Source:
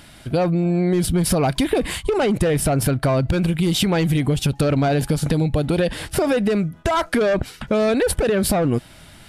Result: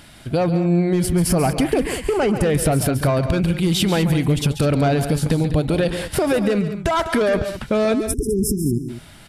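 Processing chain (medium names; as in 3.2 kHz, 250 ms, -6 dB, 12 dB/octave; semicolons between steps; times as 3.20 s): 1.03–2.44 s: peaking EQ 3.7 kHz -13.5 dB 0.22 oct; 7.93–8.89 s: spectral selection erased 440–5000 Hz; multi-tap echo 138/202 ms -11/-12.5 dB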